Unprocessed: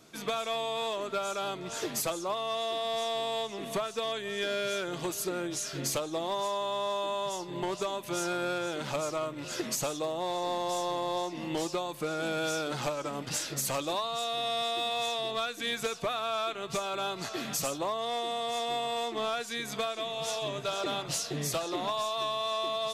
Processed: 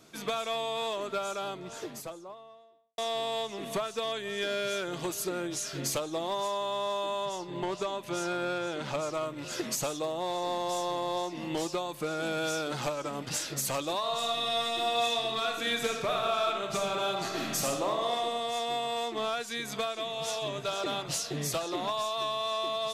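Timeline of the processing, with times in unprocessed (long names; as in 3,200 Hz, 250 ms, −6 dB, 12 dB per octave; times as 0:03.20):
0:01.01–0:02.98: fade out and dull
0:07.25–0:09.14: high-shelf EQ 8,900 Hz −11 dB
0:13.98–0:18.16: thrown reverb, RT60 1.2 s, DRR 1.5 dB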